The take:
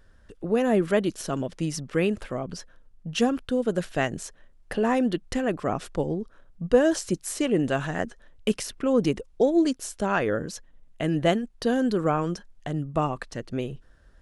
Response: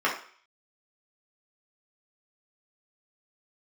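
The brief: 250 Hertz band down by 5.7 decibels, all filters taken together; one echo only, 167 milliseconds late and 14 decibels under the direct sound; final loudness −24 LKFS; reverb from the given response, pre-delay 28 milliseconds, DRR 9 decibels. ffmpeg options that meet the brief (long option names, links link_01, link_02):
-filter_complex "[0:a]equalizer=frequency=250:width_type=o:gain=-7.5,aecho=1:1:167:0.2,asplit=2[link_01][link_02];[1:a]atrim=start_sample=2205,adelay=28[link_03];[link_02][link_03]afir=irnorm=-1:irlink=0,volume=-23dB[link_04];[link_01][link_04]amix=inputs=2:normalize=0,volume=4.5dB"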